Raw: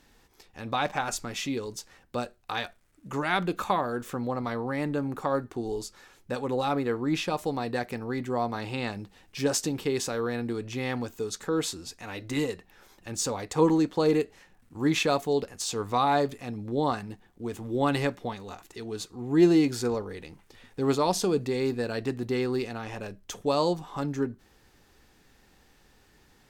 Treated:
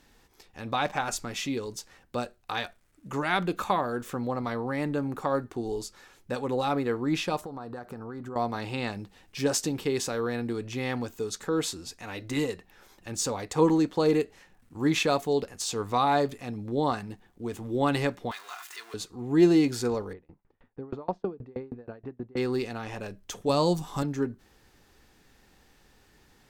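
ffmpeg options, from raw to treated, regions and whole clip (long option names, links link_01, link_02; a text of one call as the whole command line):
ffmpeg -i in.wav -filter_complex "[0:a]asettb=1/sr,asplit=3[link_01][link_02][link_03];[link_01]atrim=end=7.414[link_04];[link_02]atrim=start=7.41:end=8.36,asetpts=PTS-STARTPTS,afade=type=in:duration=0.004:curve=qsin,afade=type=out:start_time=0.946:duration=0.004:curve=qsin,highshelf=frequency=1700:width_type=q:width=3:gain=-7,acompressor=threshold=-35dB:ratio=6:attack=3.2:release=140:knee=1:detection=peak[link_05];[link_03]atrim=start=8.356[link_06];[link_04][link_05]acrossfade=duration=0.004:curve1=hsin:curve2=qsin[link_07];[link_07][link_06]acrossfade=duration=0.004:curve1=qsin:curve2=hsin,asettb=1/sr,asplit=3[link_08][link_09][link_10];[link_08]atrim=end=18.314[link_11];[link_09]atrim=start=18.31:end=18.94,asetpts=PTS-STARTPTS,afade=type=in:duration=0.004:curve=qsin,afade=type=out:start_time=0.626:duration=0.004:curve=qsin,aeval=exprs='val(0)+0.5*0.00841*sgn(val(0))':channel_layout=same,highpass=frequency=1300:width_type=q:width=1.6,aecho=1:1:2.9:0.36,atrim=end_sample=27783[link_12];[link_10]atrim=start=18.936[link_13];[link_11][link_12]acrossfade=duration=0.004:curve1=hsin:curve2=qsin[link_14];[link_14][link_13]acrossfade=duration=0.004:curve1=qsin:curve2=hsin,asettb=1/sr,asplit=3[link_15][link_16][link_17];[link_15]atrim=end=20.134[link_18];[link_16]atrim=start=20.13:end=22.37,asetpts=PTS-STARTPTS,afade=type=in:duration=0.004:curve=qsin,afade=type=out:start_time=2.236:duration=0.004:curve=qsin,lowpass=1300,aeval=exprs='val(0)*pow(10,-31*if(lt(mod(6.3*n/s,1),2*abs(6.3)/1000),1-mod(6.3*n/s,1)/(2*abs(6.3)/1000),(mod(6.3*n/s,1)-2*abs(6.3)/1000)/(1-2*abs(6.3)/1000))/20)':channel_layout=same[link_19];[link_17]atrim=start=22.366[link_20];[link_18][link_19]acrossfade=duration=0.004:curve1=hsin:curve2=qsin[link_21];[link_21][link_20]acrossfade=duration=0.004:curve1=qsin:curve2=hsin,asettb=1/sr,asplit=3[link_22][link_23][link_24];[link_22]atrim=end=23.494[link_25];[link_23]atrim=start=23.49:end=24.03,asetpts=PTS-STARTPTS,afade=type=in:duration=0.004:curve=qsin,afade=type=out:start_time=0.536:duration=0.004:curve=qsin,acrossover=split=3300[link_26][link_27];[link_27]acompressor=threshold=-44dB:ratio=4:attack=1:release=60[link_28];[link_26][link_28]amix=inputs=2:normalize=0,bass=frequency=250:gain=7,treble=frequency=4000:gain=12[link_29];[link_24]atrim=start=24.026[link_30];[link_25][link_29]acrossfade=duration=0.004:curve1=hsin:curve2=qsin[link_31];[link_31][link_30]acrossfade=duration=0.004:curve1=qsin:curve2=hsin" out.wav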